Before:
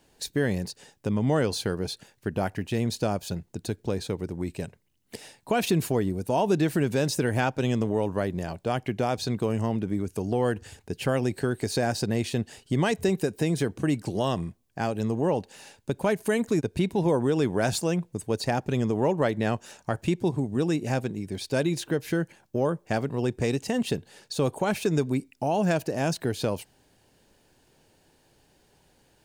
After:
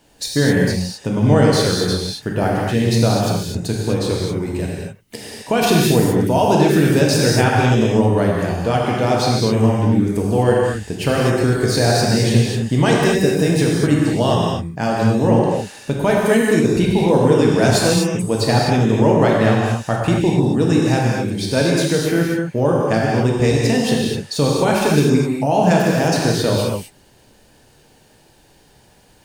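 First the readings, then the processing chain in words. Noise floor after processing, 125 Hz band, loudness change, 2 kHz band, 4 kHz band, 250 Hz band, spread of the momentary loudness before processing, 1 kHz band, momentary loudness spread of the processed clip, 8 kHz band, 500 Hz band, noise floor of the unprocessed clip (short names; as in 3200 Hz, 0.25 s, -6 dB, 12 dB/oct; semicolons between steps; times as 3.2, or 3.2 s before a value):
-52 dBFS, +12.5 dB, +11.0 dB, +11.0 dB, +13.0 dB, +11.0 dB, 9 LU, +11.0 dB, 8 LU, +12.0 dB, +10.5 dB, -65 dBFS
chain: dynamic EQ 5100 Hz, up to +4 dB, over -49 dBFS, Q 3.2; non-linear reverb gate 0.28 s flat, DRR -3.5 dB; gain +6 dB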